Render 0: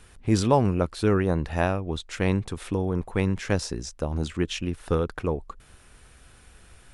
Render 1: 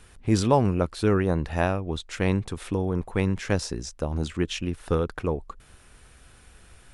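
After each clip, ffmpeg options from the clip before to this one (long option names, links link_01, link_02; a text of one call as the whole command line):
ffmpeg -i in.wav -af anull out.wav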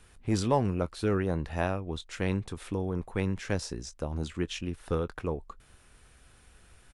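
ffmpeg -i in.wav -filter_complex "[0:a]acrossover=split=590[link_01][link_02];[link_01]volume=15dB,asoftclip=hard,volume=-15dB[link_03];[link_02]asplit=2[link_04][link_05];[link_05]adelay=21,volume=-14dB[link_06];[link_04][link_06]amix=inputs=2:normalize=0[link_07];[link_03][link_07]amix=inputs=2:normalize=0,volume=-5.5dB" out.wav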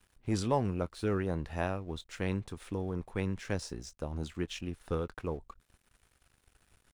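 ffmpeg -i in.wav -af "aeval=exprs='sgn(val(0))*max(abs(val(0))-0.00141,0)':channel_layout=same,volume=-3.5dB" out.wav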